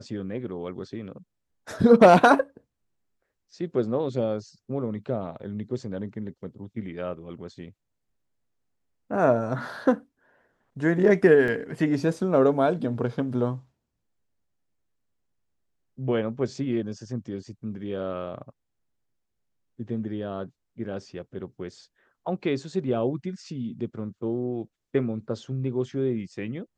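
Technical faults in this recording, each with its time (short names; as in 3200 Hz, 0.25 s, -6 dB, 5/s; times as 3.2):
11.48 gap 2.1 ms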